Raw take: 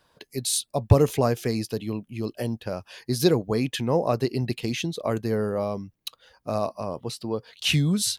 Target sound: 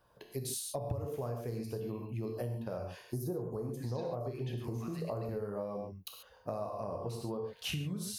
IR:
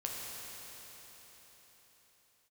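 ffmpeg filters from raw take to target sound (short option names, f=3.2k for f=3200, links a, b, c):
-filter_complex "[0:a]equalizer=f=250:t=o:w=1:g=-5,equalizer=f=2k:t=o:w=1:g=-7,equalizer=f=4k:t=o:w=1:g=-9,equalizer=f=8k:t=o:w=1:g=-8,asettb=1/sr,asplit=3[a][b][c];[a]atrim=end=3.054[d];[b]atrim=start=3.05:end=5.29,asetpts=PTS-STARTPTS,afade=t=in:d=0.004:c=qsin,afade=t=out:st=2.236:d=0.004:c=qsin,acrossover=split=1400|5900[e][f][g];[e]adelay=40[h];[f]adelay=730[i];[h][i][g]amix=inputs=3:normalize=0,atrim=end_sample=98784[j];[c]atrim=start=5.286[k];[d][j]acrossfade=d=0.004:c1=hsin:c2=qsin[l];[l][k]acrossfade=d=0.004:c1=qsin:c2=hsin[m];[1:a]atrim=start_sample=2205,atrim=end_sample=6615[n];[m][n]afir=irnorm=-1:irlink=0,acompressor=threshold=-34dB:ratio=12"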